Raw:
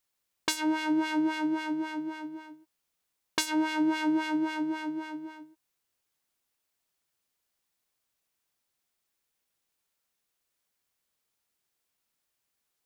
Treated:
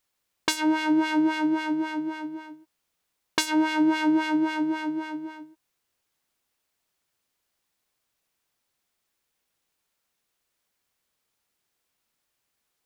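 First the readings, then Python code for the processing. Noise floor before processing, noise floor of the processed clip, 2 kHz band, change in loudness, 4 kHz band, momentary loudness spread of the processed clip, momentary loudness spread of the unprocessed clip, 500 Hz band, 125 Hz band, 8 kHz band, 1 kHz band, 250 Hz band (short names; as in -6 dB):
-82 dBFS, -79 dBFS, +4.5 dB, +5.0 dB, +4.0 dB, 13 LU, 13 LU, +5.0 dB, n/a, +2.5 dB, +5.0 dB, +5.0 dB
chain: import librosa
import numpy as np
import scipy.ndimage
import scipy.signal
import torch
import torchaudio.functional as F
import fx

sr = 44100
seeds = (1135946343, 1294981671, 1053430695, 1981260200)

y = fx.high_shelf(x, sr, hz=5700.0, db=-4.0)
y = y * librosa.db_to_amplitude(5.0)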